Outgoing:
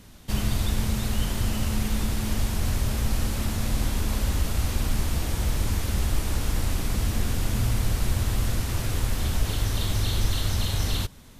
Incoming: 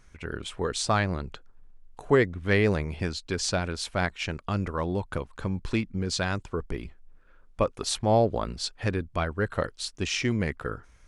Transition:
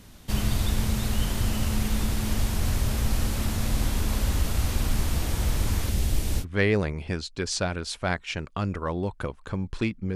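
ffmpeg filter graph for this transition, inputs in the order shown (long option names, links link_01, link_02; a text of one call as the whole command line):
ffmpeg -i cue0.wav -i cue1.wav -filter_complex "[0:a]asettb=1/sr,asplit=3[link_01][link_02][link_03];[link_01]atrim=end=5.894[link_04];[link_02]atrim=start=5.89:end=6.45,asetpts=PTS-STARTPTS,afade=type=in:duration=0.004:curve=qsin,afade=type=out:start_time=0.556:duration=0.004:curve=qsin,equalizer=frequency=1200:width_type=o:width=1.3:gain=-8[link_05];[link_03]atrim=start=6.446[link_06];[link_04][link_05]acrossfade=duration=0.004:curve1=hsin:curve2=qsin[link_07];[link_07][link_06]acrossfade=duration=0.004:curve1=qsin:curve2=hsin,apad=whole_dur=10.15,atrim=end=10.15,atrim=end=6.45,asetpts=PTS-STARTPTS[link_08];[1:a]atrim=start=2.31:end=6.07,asetpts=PTS-STARTPTS[link_09];[link_08][link_09]acrossfade=duration=0.06:curve1=tri:curve2=tri" out.wav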